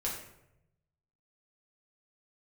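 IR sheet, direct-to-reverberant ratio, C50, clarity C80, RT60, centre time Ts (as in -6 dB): -5.5 dB, 4.0 dB, 7.0 dB, 0.85 s, 40 ms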